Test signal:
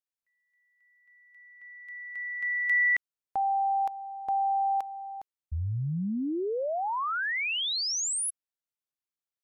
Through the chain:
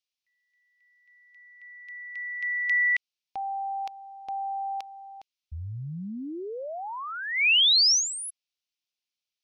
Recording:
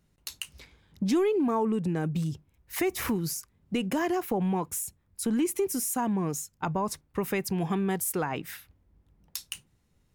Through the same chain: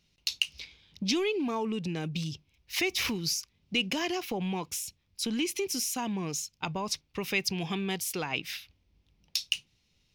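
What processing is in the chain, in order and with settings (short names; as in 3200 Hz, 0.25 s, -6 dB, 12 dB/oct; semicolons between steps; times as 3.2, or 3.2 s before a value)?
band shelf 3700 Hz +15.5 dB; gain -5 dB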